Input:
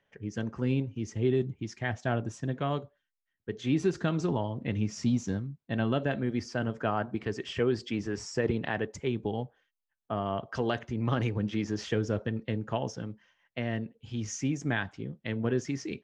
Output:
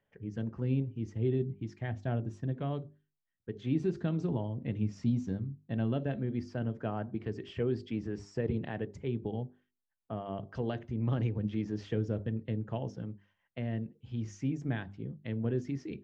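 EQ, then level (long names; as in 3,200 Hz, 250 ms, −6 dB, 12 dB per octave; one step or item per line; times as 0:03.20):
mains-hum notches 50/100/150/200/250/300/350/400 Hz
dynamic equaliser 1,200 Hz, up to −5 dB, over −46 dBFS, Q 1.1
drawn EQ curve 120 Hz 0 dB, 4,200 Hz −11 dB, 6,200 Hz −17 dB
0.0 dB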